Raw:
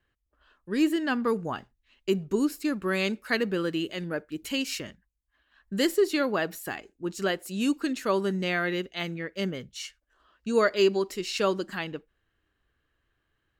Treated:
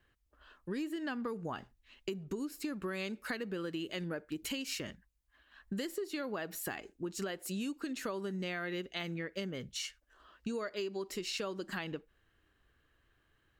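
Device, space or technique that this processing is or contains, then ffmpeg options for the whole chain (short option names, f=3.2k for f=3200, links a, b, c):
serial compression, peaks first: -af "acompressor=threshold=-33dB:ratio=6,acompressor=threshold=-42dB:ratio=2,volume=3dB"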